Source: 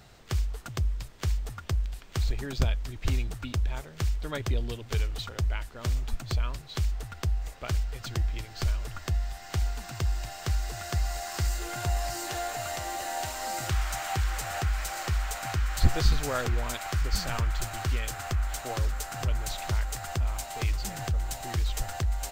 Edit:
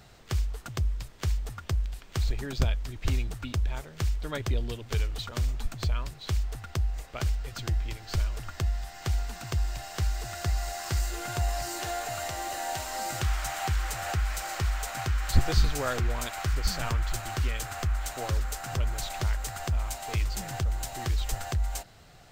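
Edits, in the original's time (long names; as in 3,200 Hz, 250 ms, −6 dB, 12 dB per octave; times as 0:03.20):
0:05.32–0:05.80: remove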